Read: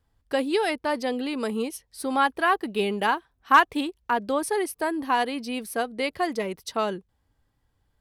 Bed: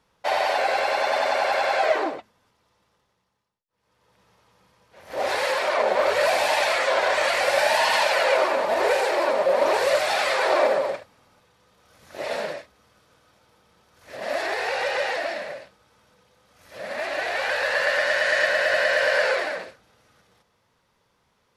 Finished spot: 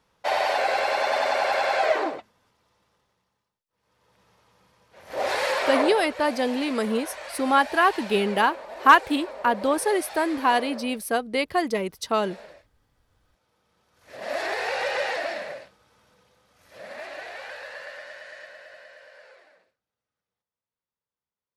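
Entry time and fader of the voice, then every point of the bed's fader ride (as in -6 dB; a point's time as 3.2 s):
5.35 s, +2.5 dB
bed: 5.83 s -1 dB
6.08 s -16.5 dB
12.95 s -16.5 dB
14.44 s -1.5 dB
16.28 s -1.5 dB
19.11 s -29.5 dB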